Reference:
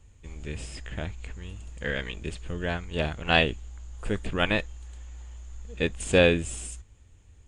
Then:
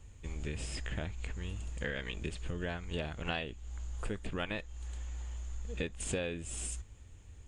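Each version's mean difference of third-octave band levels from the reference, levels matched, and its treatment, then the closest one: 6.5 dB: compressor 8:1, threshold -35 dBFS, peak gain reduction 20 dB; gain +1.5 dB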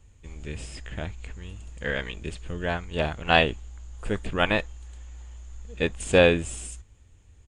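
1.5 dB: dynamic EQ 890 Hz, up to +5 dB, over -37 dBFS, Q 0.91; downsampling 32000 Hz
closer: second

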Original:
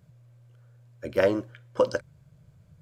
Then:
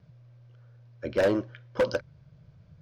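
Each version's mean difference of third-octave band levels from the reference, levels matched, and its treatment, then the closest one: 2.0 dB: steep low-pass 5800 Hz 48 dB/oct; vibrato 0.84 Hz 11 cents; hard clip -20 dBFS, distortion -10 dB; gain +1.5 dB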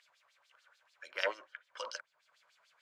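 10.0 dB: HPF 660 Hz 12 dB/oct; LFO band-pass sine 6.8 Hz 950–4700 Hz; mismatched tape noise reduction encoder only; gain +5.5 dB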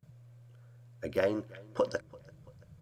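4.0 dB: gate with hold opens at -55 dBFS; compressor 1.5:1, threshold -37 dBFS, peak gain reduction 7.5 dB; feedback echo 0.337 s, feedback 47%, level -23.5 dB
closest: first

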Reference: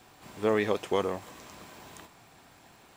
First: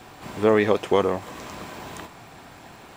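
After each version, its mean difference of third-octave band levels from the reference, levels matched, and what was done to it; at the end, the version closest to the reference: 2.5 dB: high shelf 3700 Hz -6.5 dB; in parallel at -2 dB: compressor, threshold -41 dBFS, peak gain reduction 18.5 dB; on the sum: gain +7 dB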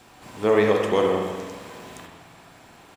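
3.5 dB: spring tank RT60 1.5 s, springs 43/47/59 ms, chirp 80 ms, DRR 0.5 dB; downsampling 32000 Hz; gain +4.5 dB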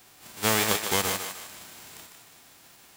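7.0 dB: spectral whitening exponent 0.3; on a send: thinning echo 0.152 s, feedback 42%, high-pass 470 Hz, level -6 dB; on the sum: gain +1.5 dB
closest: first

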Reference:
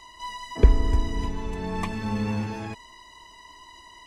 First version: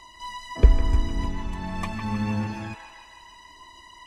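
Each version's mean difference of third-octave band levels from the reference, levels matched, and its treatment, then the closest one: 2.0 dB: notch 440 Hz, Q 12; phaser 0.82 Hz, delay 1.7 ms, feedback 23%; band-limited delay 0.155 s, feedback 52%, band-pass 1500 Hz, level -5.5 dB; gain -1 dB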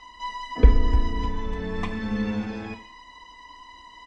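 4.0 dB: LPF 4500 Hz 12 dB/oct; comb 4 ms, depth 64%; two-slope reverb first 0.5 s, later 1.5 s, from -26 dB, DRR 7.5 dB; gain -1 dB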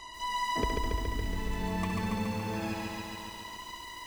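8.0 dB: compressor 12:1, threshold -32 dBFS, peak gain reduction 24 dB; on a send: thinning echo 67 ms, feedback 57%, high-pass 460 Hz, level -7 dB; on the sum: lo-fi delay 0.14 s, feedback 80%, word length 9-bit, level -3 dB; gain +1.5 dB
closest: first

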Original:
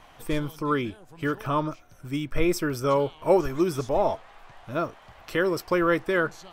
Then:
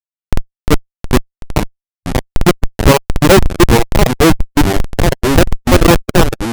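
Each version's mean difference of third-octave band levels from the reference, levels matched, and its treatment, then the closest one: 15.5 dB: Schmitt trigger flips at -17.5 dBFS; reverb removal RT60 0.82 s; echoes that change speed 0.291 s, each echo -3 st, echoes 3, each echo -6 dB; maximiser +28 dB; gain -1 dB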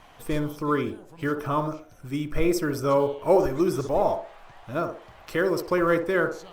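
2.5 dB: block floating point 7-bit; dynamic EQ 3000 Hz, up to -4 dB, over -47 dBFS, Q 1.5; on a send: narrowing echo 61 ms, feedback 41%, band-pass 490 Hz, level -5.5 dB; on the sum: Opus 64 kbps 48000 Hz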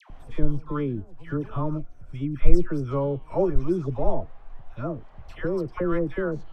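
11.0 dB: LPF 12000 Hz 24 dB/oct; tilt -4 dB/oct; upward compressor, threshold -26 dBFS; dispersion lows, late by 0.101 s, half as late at 1100 Hz; gain -7.5 dB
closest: second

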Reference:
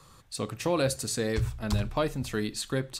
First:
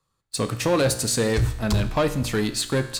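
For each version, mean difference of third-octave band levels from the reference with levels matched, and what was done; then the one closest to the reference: 4.5 dB: gate -41 dBFS, range -18 dB; sample leveller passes 2; resonator 59 Hz, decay 0.99 s, harmonics all, mix 60%; gain +8 dB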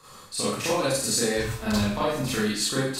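8.5 dB: low shelf 150 Hz -10.5 dB; compressor, threshold -31 dBFS, peak gain reduction 8.5 dB; Schroeder reverb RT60 0.56 s, combs from 30 ms, DRR -9.5 dB; gain +1 dB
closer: first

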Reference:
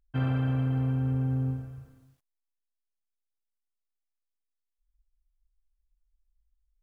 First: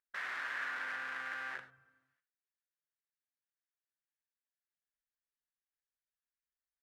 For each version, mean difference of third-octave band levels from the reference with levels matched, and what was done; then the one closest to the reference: 13.0 dB: wrapped overs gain 31 dB; band-pass 1700 Hz, Q 4.5; non-linear reverb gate 0.12 s flat, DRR 9.5 dB; gain +4.5 dB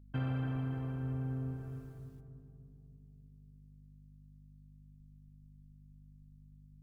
3.5 dB: compressor 2:1, threshold -38 dBFS, peak gain reduction 8 dB; hum 50 Hz, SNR 16 dB; on a send: darkening echo 0.293 s, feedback 59%, low-pass 940 Hz, level -6 dB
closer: second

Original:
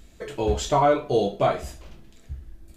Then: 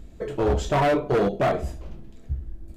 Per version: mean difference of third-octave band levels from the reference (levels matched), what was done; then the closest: 4.5 dB: tilt shelf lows +7 dB, about 1100 Hz; hard clip -17.5 dBFS, distortion -8 dB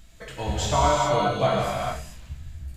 9.0 dB: bell 390 Hz -14 dB 0.95 oct; non-linear reverb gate 0.46 s flat, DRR -3 dB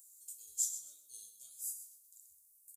22.0 dB: inverse Chebyshev high-pass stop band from 2200 Hz, stop band 70 dB; feedback echo 0.127 s, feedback 25%, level -11 dB; gain +11.5 dB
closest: first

